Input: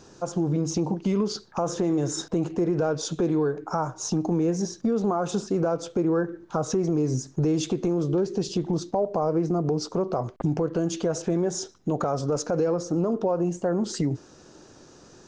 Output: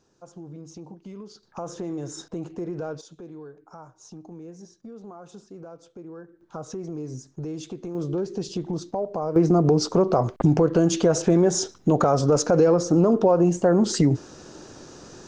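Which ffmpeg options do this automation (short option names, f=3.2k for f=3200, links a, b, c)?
-af "asetnsamples=n=441:p=0,asendcmd='1.43 volume volume -7.5dB;3.01 volume volume -17.5dB;6.41 volume volume -9.5dB;7.95 volume volume -3dB;9.36 volume volume 6.5dB',volume=-16dB"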